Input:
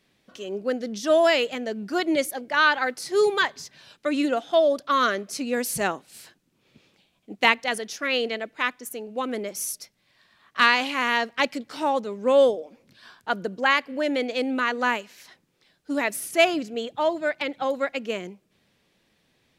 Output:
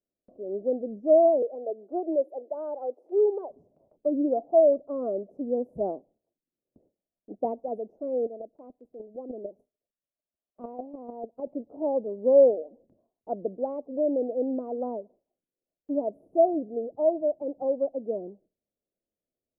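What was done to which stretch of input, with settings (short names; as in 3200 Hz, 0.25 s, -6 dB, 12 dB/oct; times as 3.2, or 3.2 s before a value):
1.42–3.5 HPF 360 Hz 24 dB/oct
8.25–11.47 chopper 6.7 Hz, depth 60%, duty 10%
whole clip: elliptic low-pass 660 Hz, stop band 60 dB; gate with hold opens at -52 dBFS; bell 140 Hz -12 dB 1.6 oct; gain +2.5 dB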